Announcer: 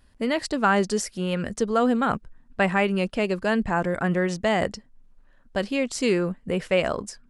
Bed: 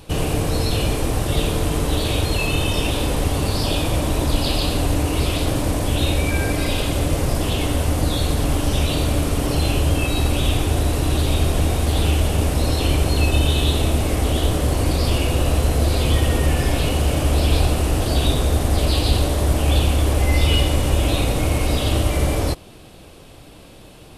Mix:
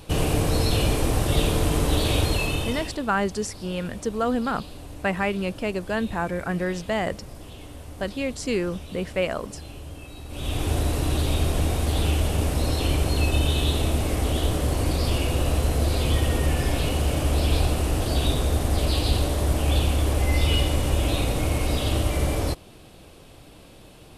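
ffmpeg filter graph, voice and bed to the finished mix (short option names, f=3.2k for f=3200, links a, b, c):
-filter_complex "[0:a]adelay=2450,volume=-3dB[a];[1:a]volume=14.5dB,afade=t=out:st=2.22:d=0.77:silence=0.112202,afade=t=in:st=10.28:d=0.42:silence=0.158489[b];[a][b]amix=inputs=2:normalize=0"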